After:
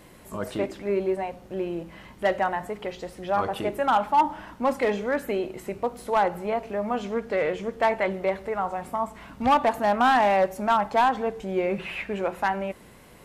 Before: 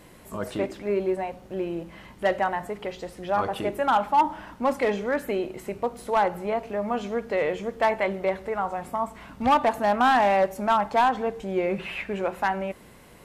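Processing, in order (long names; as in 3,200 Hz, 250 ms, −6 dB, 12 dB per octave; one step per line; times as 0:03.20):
tape wow and flutter 26 cents
0:07.05–0:08.10: highs frequency-modulated by the lows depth 0.11 ms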